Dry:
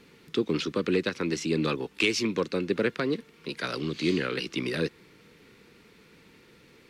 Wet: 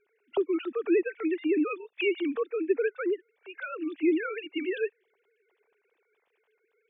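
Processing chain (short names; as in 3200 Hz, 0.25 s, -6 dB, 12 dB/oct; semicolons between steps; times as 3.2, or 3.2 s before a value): sine-wave speech; spectral noise reduction 9 dB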